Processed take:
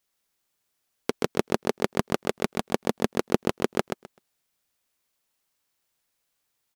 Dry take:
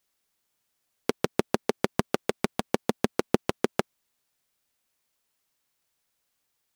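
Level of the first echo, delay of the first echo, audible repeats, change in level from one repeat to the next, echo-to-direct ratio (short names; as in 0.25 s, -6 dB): -4.5 dB, 0.128 s, 2, -15.5 dB, -4.5 dB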